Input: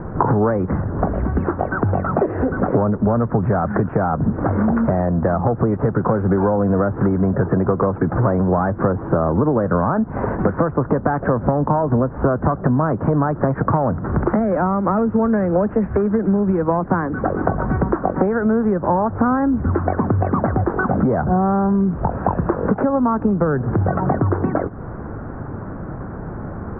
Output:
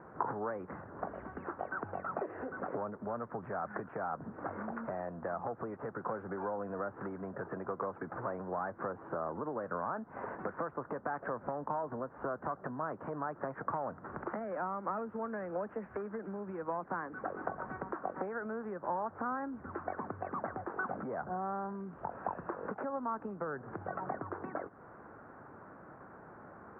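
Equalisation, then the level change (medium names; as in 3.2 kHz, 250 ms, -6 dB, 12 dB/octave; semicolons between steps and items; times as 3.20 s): low-pass 1 kHz 6 dB/octave; differentiator; +4.5 dB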